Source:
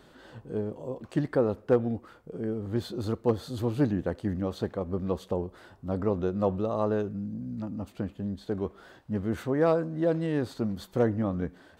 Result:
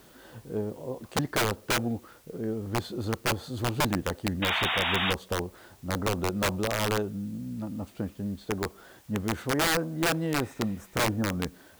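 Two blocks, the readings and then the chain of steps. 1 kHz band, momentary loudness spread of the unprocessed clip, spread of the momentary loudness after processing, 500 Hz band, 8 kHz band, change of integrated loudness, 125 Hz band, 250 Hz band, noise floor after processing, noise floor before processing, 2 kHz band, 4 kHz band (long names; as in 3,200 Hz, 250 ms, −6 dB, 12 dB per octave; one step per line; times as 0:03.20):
+5.5 dB, 10 LU, 11 LU, −4.0 dB, can't be measured, +0.5 dB, −0.5 dB, −2.0 dB, −55 dBFS, −57 dBFS, +13.5 dB, +17.0 dB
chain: healed spectral selection 0:10.46–0:11.33, 1,800–5,100 Hz both
dynamic equaliser 830 Hz, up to +5 dB, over −47 dBFS, Q 3.8
wrap-around overflow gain 19.5 dB
bit-depth reduction 10 bits, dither triangular
sound drawn into the spectrogram noise, 0:04.42–0:05.13, 620–3,800 Hz −28 dBFS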